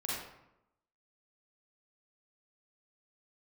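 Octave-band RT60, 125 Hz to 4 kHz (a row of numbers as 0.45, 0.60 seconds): 0.90, 0.95, 0.85, 0.85, 0.70, 0.50 seconds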